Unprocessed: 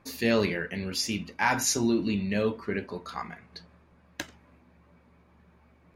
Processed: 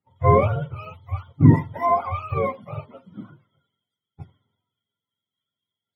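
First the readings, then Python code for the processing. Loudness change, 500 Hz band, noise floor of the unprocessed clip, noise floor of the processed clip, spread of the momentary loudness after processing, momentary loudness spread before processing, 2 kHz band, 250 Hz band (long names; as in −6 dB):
+7.5 dB, +5.5 dB, −61 dBFS, below −85 dBFS, 20 LU, 16 LU, −6.0 dB, +4.0 dB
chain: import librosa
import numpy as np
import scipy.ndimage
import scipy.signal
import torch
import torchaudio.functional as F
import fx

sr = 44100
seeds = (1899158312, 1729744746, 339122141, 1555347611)

y = fx.octave_mirror(x, sr, pivot_hz=490.0)
y = fx.band_widen(y, sr, depth_pct=100)
y = F.gain(torch.from_numpy(y), 2.0).numpy()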